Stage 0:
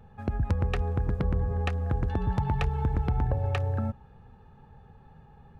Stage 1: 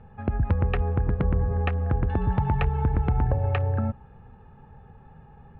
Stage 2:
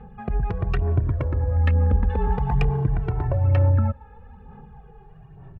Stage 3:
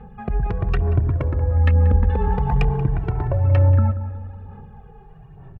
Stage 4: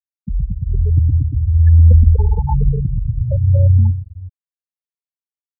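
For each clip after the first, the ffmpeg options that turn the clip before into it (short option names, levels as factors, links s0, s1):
-af "lowpass=f=2900:w=0.5412,lowpass=f=2900:w=1.3066,volume=1.5"
-filter_complex "[0:a]aphaser=in_gain=1:out_gain=1:delay=2.4:decay=0.5:speed=1.1:type=sinusoidal,asoftclip=type=tanh:threshold=0.211,asplit=2[s0][s1];[s1]adelay=2,afreqshift=-0.44[s2];[s0][s2]amix=inputs=2:normalize=1,volume=1.5"
-filter_complex "[0:a]asplit=2[s0][s1];[s1]adelay=183,lowpass=f=1600:p=1,volume=0.224,asplit=2[s2][s3];[s3]adelay=183,lowpass=f=1600:p=1,volume=0.54,asplit=2[s4][s5];[s5]adelay=183,lowpass=f=1600:p=1,volume=0.54,asplit=2[s6][s7];[s7]adelay=183,lowpass=f=1600:p=1,volume=0.54,asplit=2[s8][s9];[s9]adelay=183,lowpass=f=1600:p=1,volume=0.54,asplit=2[s10][s11];[s11]adelay=183,lowpass=f=1600:p=1,volume=0.54[s12];[s0][s2][s4][s6][s8][s10][s12]amix=inputs=7:normalize=0,volume=1.26"
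-filter_complex "[0:a]asplit=2[s0][s1];[s1]adelay=121,lowpass=f=930:p=1,volume=0.562,asplit=2[s2][s3];[s3]adelay=121,lowpass=f=930:p=1,volume=0.5,asplit=2[s4][s5];[s5]adelay=121,lowpass=f=930:p=1,volume=0.5,asplit=2[s6][s7];[s7]adelay=121,lowpass=f=930:p=1,volume=0.5,asplit=2[s8][s9];[s9]adelay=121,lowpass=f=930:p=1,volume=0.5,asplit=2[s10][s11];[s11]adelay=121,lowpass=f=930:p=1,volume=0.5[s12];[s0][s2][s4][s6][s8][s10][s12]amix=inputs=7:normalize=0,aeval=exprs='val(0)+0.00447*(sin(2*PI*60*n/s)+sin(2*PI*2*60*n/s)/2+sin(2*PI*3*60*n/s)/3+sin(2*PI*4*60*n/s)/4+sin(2*PI*5*60*n/s)/5)':c=same,afftfilt=real='re*gte(hypot(re,im),0.398)':imag='im*gte(hypot(re,im),0.398)':win_size=1024:overlap=0.75,volume=1.33"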